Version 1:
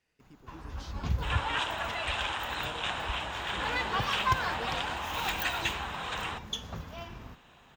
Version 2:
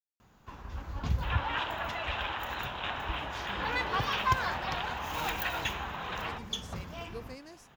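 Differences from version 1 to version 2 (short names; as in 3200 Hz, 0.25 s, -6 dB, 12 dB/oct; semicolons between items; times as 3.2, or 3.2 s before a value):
speech: entry +2.55 s; second sound: add air absorption 210 m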